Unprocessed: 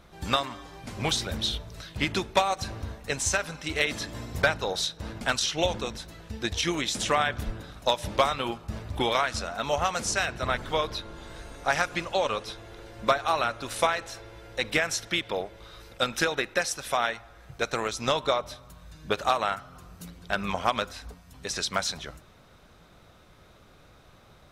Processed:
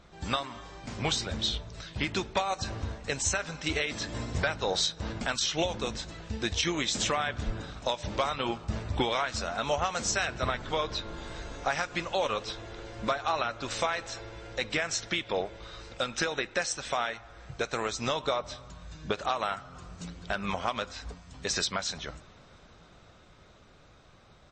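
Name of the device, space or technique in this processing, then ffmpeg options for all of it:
low-bitrate web radio: -filter_complex "[0:a]asplit=3[s0][s1][s2];[s0]afade=t=out:st=0.53:d=0.02[s3];[s1]asplit=2[s4][s5];[s5]adelay=39,volume=0.596[s6];[s4][s6]amix=inputs=2:normalize=0,afade=t=in:st=0.53:d=0.02,afade=t=out:st=0.99:d=0.02[s7];[s2]afade=t=in:st=0.99:d=0.02[s8];[s3][s7][s8]amix=inputs=3:normalize=0,dynaudnorm=f=450:g=11:m=1.68,alimiter=limit=0.178:level=0:latency=1:release=341,volume=0.841" -ar 22050 -c:a libmp3lame -b:a 32k

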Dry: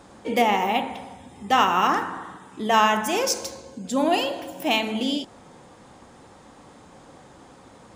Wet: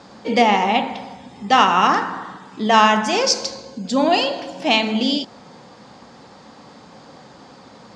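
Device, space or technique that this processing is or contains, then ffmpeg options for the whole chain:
car door speaker: -af "highpass=86,equalizer=f=90:t=q:w=4:g=-7,equalizer=f=210:t=q:w=4:g=3,equalizer=f=340:t=q:w=4:g=-4,equalizer=f=4600:t=q:w=4:g=9,lowpass=f=6600:w=0.5412,lowpass=f=6600:w=1.3066,volume=1.78"

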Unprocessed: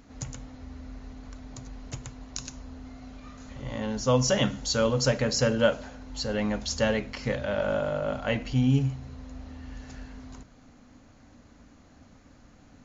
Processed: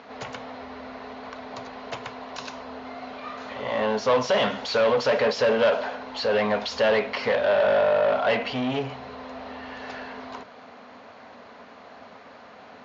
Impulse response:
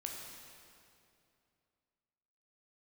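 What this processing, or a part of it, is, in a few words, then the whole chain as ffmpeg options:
overdrive pedal into a guitar cabinet: -filter_complex "[0:a]asplit=2[s0][s1];[s1]highpass=f=720:p=1,volume=22.4,asoftclip=type=tanh:threshold=0.335[s2];[s0][s2]amix=inputs=2:normalize=0,lowpass=f=4000:p=1,volume=0.501,highpass=110,equalizer=f=140:t=q:w=4:g=-9,equalizer=f=310:t=q:w=4:g=-10,equalizer=f=430:t=q:w=4:g=7,equalizer=f=670:t=q:w=4:g=6,equalizer=f=1000:t=q:w=4:g=5,lowpass=f=4500:w=0.5412,lowpass=f=4500:w=1.3066,volume=0.501"

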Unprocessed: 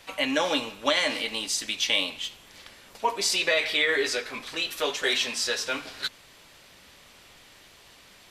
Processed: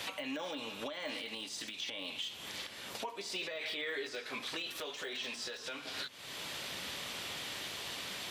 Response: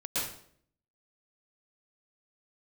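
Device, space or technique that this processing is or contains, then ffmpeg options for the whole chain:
broadcast voice chain: -af "highpass=100,deesser=0.9,acompressor=threshold=0.00631:ratio=4,equalizer=f=3400:t=o:w=0.63:g=4,alimiter=level_in=5.31:limit=0.0631:level=0:latency=1:release=447,volume=0.188,volume=2.99"

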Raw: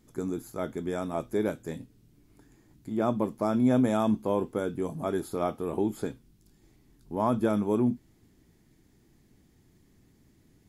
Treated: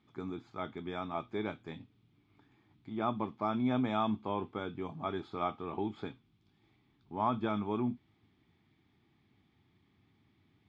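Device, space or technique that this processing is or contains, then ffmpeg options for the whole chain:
guitar cabinet: -af "highpass=90,equalizer=f=96:t=q:w=4:g=7,equalizer=f=520:t=q:w=4:g=-7,equalizer=f=820:t=q:w=4:g=7,equalizer=f=1200:t=q:w=4:g=9,equalizer=f=2300:t=q:w=4:g=9,equalizer=f=3400:t=q:w=4:g=9,lowpass=f=4400:w=0.5412,lowpass=f=4400:w=1.3066,volume=0.398"

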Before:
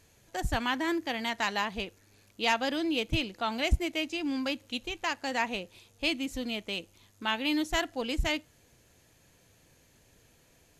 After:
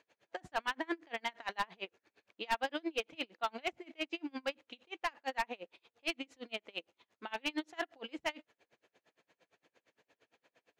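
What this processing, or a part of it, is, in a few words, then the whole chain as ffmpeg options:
helicopter radio: -af "highpass=400,lowpass=2900,aeval=exprs='val(0)*pow(10,-33*(0.5-0.5*cos(2*PI*8.7*n/s))/20)':c=same,asoftclip=type=hard:threshold=0.0398,volume=1.26"

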